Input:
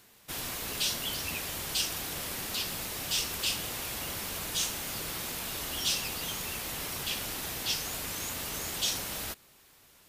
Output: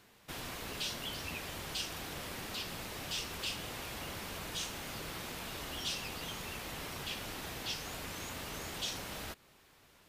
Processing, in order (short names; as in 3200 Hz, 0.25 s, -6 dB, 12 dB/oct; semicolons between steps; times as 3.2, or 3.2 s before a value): high shelf 5400 Hz -11.5 dB; in parallel at -1 dB: compressor, threshold -44 dBFS, peak gain reduction 13.5 dB; on the sum: gain -5.5 dB